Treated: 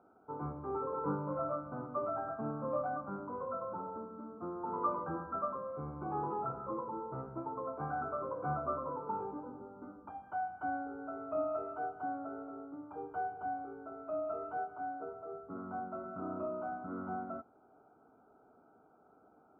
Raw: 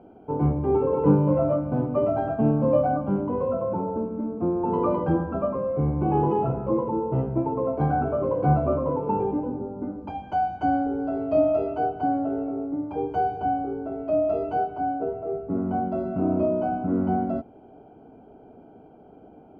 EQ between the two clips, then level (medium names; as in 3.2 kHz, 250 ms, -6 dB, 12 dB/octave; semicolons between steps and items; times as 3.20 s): band-pass filter 1.3 kHz, Q 9.3; distance through air 240 m; tilt EQ -4 dB/octave; +7.0 dB